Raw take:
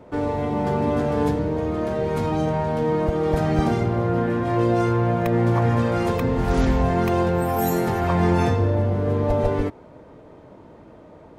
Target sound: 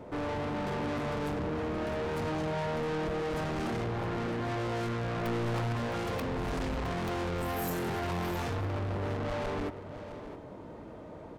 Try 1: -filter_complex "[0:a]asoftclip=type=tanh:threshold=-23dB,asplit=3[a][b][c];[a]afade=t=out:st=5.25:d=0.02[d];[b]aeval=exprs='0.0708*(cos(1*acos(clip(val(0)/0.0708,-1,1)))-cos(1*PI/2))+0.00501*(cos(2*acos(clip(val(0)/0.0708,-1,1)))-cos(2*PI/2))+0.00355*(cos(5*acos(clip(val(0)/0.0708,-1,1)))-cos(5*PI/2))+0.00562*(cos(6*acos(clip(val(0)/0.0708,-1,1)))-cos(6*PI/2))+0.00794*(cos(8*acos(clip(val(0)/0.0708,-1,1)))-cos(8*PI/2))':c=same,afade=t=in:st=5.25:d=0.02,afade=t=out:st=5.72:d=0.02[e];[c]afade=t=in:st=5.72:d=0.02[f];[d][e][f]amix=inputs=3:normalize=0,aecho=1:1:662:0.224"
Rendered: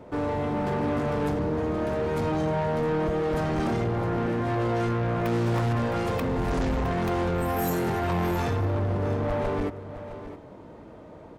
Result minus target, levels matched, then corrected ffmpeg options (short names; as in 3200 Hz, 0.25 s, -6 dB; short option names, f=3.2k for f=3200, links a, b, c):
soft clip: distortion -4 dB
-filter_complex "[0:a]asoftclip=type=tanh:threshold=-32dB,asplit=3[a][b][c];[a]afade=t=out:st=5.25:d=0.02[d];[b]aeval=exprs='0.0708*(cos(1*acos(clip(val(0)/0.0708,-1,1)))-cos(1*PI/2))+0.00501*(cos(2*acos(clip(val(0)/0.0708,-1,1)))-cos(2*PI/2))+0.00355*(cos(5*acos(clip(val(0)/0.0708,-1,1)))-cos(5*PI/2))+0.00562*(cos(6*acos(clip(val(0)/0.0708,-1,1)))-cos(6*PI/2))+0.00794*(cos(8*acos(clip(val(0)/0.0708,-1,1)))-cos(8*PI/2))':c=same,afade=t=in:st=5.25:d=0.02,afade=t=out:st=5.72:d=0.02[e];[c]afade=t=in:st=5.72:d=0.02[f];[d][e][f]amix=inputs=3:normalize=0,aecho=1:1:662:0.224"